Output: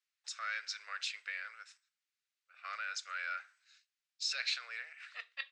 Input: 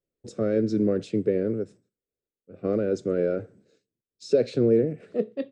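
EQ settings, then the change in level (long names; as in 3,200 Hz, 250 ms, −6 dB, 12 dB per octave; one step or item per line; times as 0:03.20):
Bessel high-pass filter 2,100 Hz, order 8
high-frequency loss of the air 110 metres
parametric band 3,300 Hz −3 dB 0.27 octaves
+13.5 dB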